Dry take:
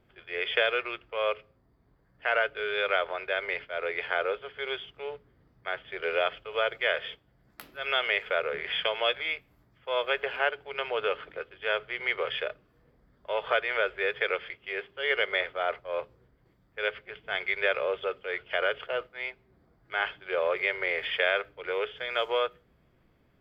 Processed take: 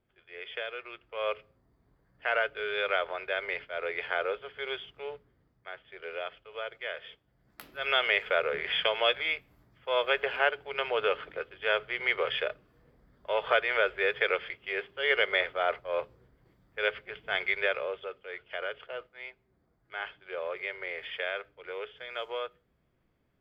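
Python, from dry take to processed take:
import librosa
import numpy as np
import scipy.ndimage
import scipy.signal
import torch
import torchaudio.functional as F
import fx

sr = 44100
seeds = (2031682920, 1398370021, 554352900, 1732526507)

y = fx.gain(x, sr, db=fx.line((0.77, -11.5), (1.34, -2.0), (5.11, -2.0), (5.73, -10.0), (7.0, -10.0), (7.8, 1.0), (17.46, 1.0), (18.08, -8.0)))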